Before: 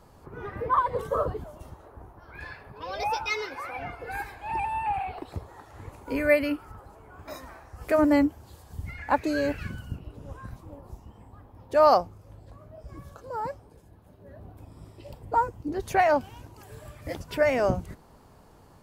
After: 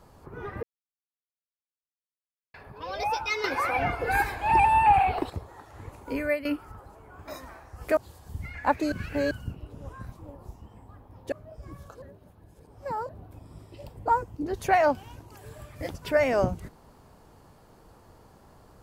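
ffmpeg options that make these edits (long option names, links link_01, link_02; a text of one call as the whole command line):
ffmpeg -i in.wav -filter_complex "[0:a]asplit=12[link_01][link_02][link_03][link_04][link_05][link_06][link_07][link_08][link_09][link_10][link_11][link_12];[link_01]atrim=end=0.63,asetpts=PTS-STARTPTS,afade=type=out:start_time=0.626:duration=0.004:curve=hsin[link_13];[link_02]atrim=start=0.63:end=2.54,asetpts=PTS-STARTPTS,volume=0[link_14];[link_03]atrim=start=2.54:end=3.442,asetpts=PTS-STARTPTS,afade=type=in:duration=0.004:curve=hsin[link_15];[link_04]atrim=start=3.438:end=5.302,asetpts=PTS-STARTPTS,volume=9.5dB[link_16];[link_05]atrim=start=5.298:end=6.45,asetpts=PTS-STARTPTS,afade=type=out:start_time=0.762:duration=0.39:silence=0.223872[link_17];[link_06]atrim=start=6.45:end=7.972,asetpts=PTS-STARTPTS,afade=type=in:duration=0.004:curve=hsin:silence=0.223872[link_18];[link_07]atrim=start=8.408:end=9.362[link_19];[link_08]atrim=start=9.358:end=9.752,asetpts=PTS-STARTPTS,areverse[link_20];[link_09]atrim=start=9.748:end=11.762[link_21];[link_10]atrim=start=12.578:end=13.282[link_22];[link_11]atrim=start=13.278:end=14.352,asetpts=PTS-STARTPTS,areverse[link_23];[link_12]atrim=start=14.348[link_24];[link_13][link_14][link_15]concat=n=3:v=0:a=1[link_25];[link_25][link_16]acrossfade=duration=0.004:curve1=hsin:curve2=hsin[link_26];[link_17][link_18]concat=n=2:v=0:a=1[link_27];[link_26][link_27]acrossfade=duration=0.004:curve1=hsin:curve2=hsin[link_28];[link_28][link_19]acrossfade=duration=0.004:curve1=hsin:curve2=hsin[link_29];[link_29][link_20]acrossfade=duration=0.004:curve1=hsin:curve2=hsin[link_30];[link_30][link_21]acrossfade=duration=0.004:curve1=hsin:curve2=hsin[link_31];[link_31][link_22]acrossfade=duration=0.004:curve1=hsin:curve2=hsin[link_32];[link_32][link_23]acrossfade=duration=0.004:curve1=hsin:curve2=hsin[link_33];[link_33][link_24]acrossfade=duration=0.004:curve1=hsin:curve2=hsin" out.wav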